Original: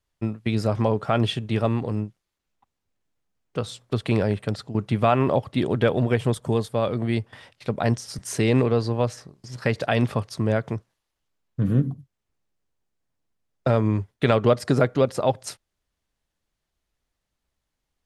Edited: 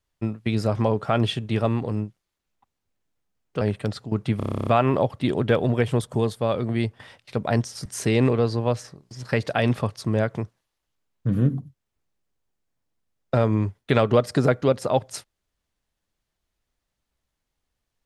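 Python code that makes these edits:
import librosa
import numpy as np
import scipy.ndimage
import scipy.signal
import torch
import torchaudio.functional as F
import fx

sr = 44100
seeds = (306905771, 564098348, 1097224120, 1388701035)

y = fx.edit(x, sr, fx.cut(start_s=3.61, length_s=0.63),
    fx.stutter(start_s=5.0, slice_s=0.03, count=11), tone=tone)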